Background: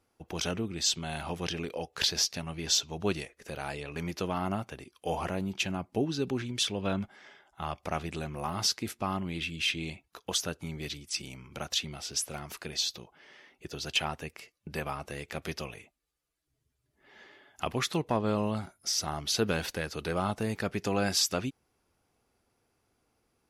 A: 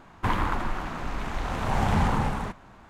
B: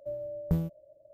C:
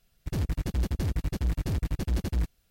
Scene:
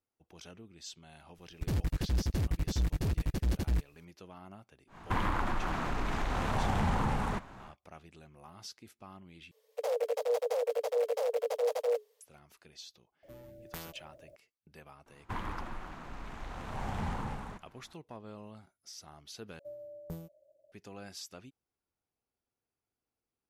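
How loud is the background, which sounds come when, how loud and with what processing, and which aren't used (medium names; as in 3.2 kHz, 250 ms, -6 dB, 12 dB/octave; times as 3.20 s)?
background -18.5 dB
1.35 s: add C -2.5 dB
4.87 s: add A, fades 0.10 s + compression 2.5:1, threshold -28 dBFS
9.51 s: replace with C -3.5 dB + frequency shift +420 Hz
13.23 s: add B -8.5 dB + spectrum-flattening compressor 4:1
15.06 s: add A -12.5 dB
19.59 s: replace with B -9 dB + tone controls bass -8 dB, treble +7 dB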